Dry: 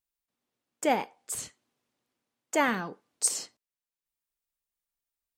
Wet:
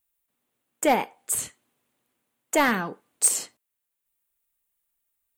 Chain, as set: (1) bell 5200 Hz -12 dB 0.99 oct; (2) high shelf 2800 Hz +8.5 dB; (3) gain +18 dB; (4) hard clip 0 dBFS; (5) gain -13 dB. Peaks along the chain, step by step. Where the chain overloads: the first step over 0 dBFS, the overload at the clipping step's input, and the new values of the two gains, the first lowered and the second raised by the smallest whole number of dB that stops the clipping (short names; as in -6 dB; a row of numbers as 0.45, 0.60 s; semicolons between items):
-12.5, -9.0, +9.0, 0.0, -13.0 dBFS; step 3, 9.0 dB; step 3 +9 dB, step 5 -4 dB